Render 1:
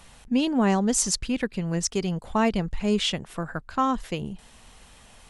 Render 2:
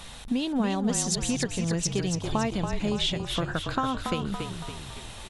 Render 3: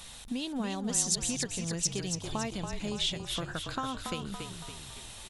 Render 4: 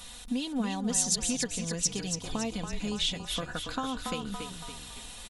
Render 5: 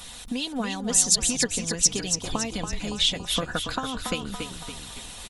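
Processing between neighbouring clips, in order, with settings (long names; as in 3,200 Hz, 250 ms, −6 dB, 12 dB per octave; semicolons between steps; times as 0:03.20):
parametric band 3,700 Hz +9 dB 0.29 octaves; downward compressor 6 to 1, threshold −32 dBFS, peak gain reduction 14 dB; on a send: echo with shifted repeats 281 ms, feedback 54%, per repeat −33 Hz, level −6 dB; on the sum: level +6.5 dB
high-shelf EQ 3,700 Hz +10.5 dB; level −8 dB
comb filter 4.1 ms, depth 60%
harmonic and percussive parts rebalanced percussive +9 dB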